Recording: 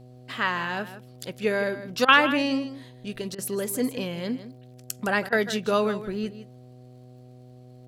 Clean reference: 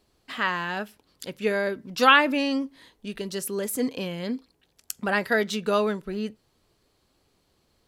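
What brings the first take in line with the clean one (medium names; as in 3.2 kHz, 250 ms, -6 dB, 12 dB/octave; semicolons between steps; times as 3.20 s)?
de-click; de-hum 125 Hz, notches 6; interpolate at 2.05/3.35/5.29 s, 33 ms; inverse comb 159 ms -13 dB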